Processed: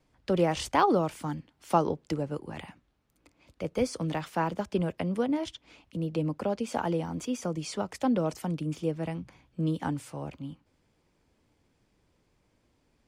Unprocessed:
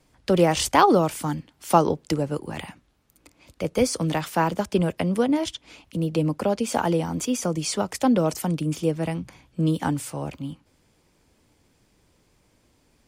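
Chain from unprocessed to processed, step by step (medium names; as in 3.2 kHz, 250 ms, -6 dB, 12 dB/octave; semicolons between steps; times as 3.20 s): low-pass 3.9 kHz 6 dB/octave; trim -6.5 dB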